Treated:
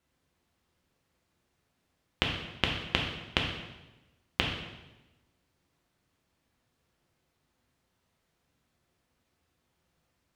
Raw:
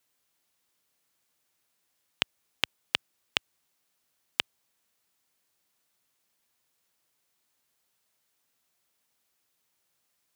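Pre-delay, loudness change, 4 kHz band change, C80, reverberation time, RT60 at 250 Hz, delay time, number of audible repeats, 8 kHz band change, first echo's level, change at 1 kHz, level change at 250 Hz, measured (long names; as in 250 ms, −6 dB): 3 ms, +0.5 dB, 0.0 dB, 6.5 dB, 1.1 s, 1.2 s, no echo audible, no echo audible, −5.5 dB, no echo audible, +4.5 dB, +12.5 dB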